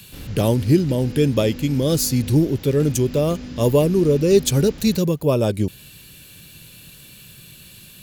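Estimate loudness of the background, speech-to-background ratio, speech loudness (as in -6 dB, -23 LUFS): -35.5 LUFS, 16.5 dB, -19.0 LUFS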